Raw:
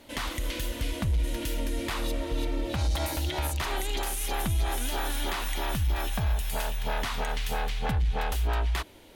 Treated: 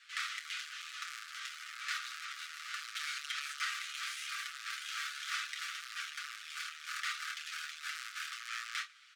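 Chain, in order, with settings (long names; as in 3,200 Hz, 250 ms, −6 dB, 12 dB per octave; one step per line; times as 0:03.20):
each half-wave held at its own peak
high-frequency loss of the air 130 metres
on a send: ambience of single reflections 26 ms −7.5 dB, 46 ms −15 dB
on the sum: hard clipping −23 dBFS, distortion −12 dB
Chebyshev high-pass filter 1,200 Hz, order 8
parametric band 12,000 Hz +6.5 dB 1.9 octaves
comb filter 6.9 ms
level −5 dB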